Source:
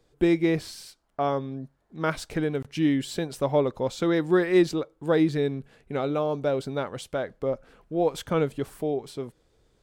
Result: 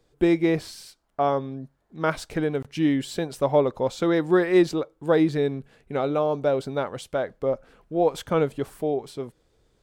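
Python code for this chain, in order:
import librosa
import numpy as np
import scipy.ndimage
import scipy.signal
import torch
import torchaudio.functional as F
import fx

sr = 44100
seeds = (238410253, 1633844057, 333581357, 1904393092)

y = fx.dynamic_eq(x, sr, hz=750.0, q=0.74, threshold_db=-35.0, ratio=4.0, max_db=4)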